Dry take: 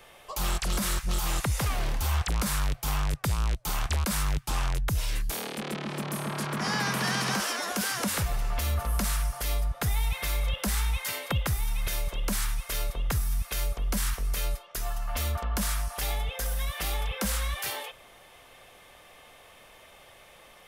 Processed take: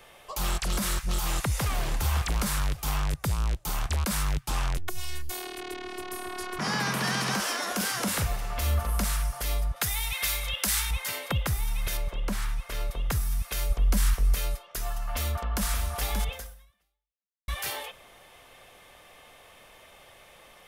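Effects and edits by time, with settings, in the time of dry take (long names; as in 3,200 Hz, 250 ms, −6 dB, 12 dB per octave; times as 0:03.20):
0:01.13–0:01.91: delay throw 560 ms, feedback 35%, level −9.5 dB
0:03.16–0:03.98: parametric band 2,500 Hz −2.5 dB 2.7 octaves
0:04.77–0:06.59: phases set to zero 363 Hz
0:07.41–0:09.04: double-tracking delay 41 ms −8 dB
0:09.76–0:10.91: tilt shelving filter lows −7 dB, about 1,100 Hz
0:11.97–0:12.91: high-shelf EQ 4,300 Hz −11 dB
0:13.70–0:14.35: low-shelf EQ 130 Hz +7.5 dB
0:15.01–0:15.66: delay throw 580 ms, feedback 30%, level −6 dB
0:16.32–0:17.48: fade out exponential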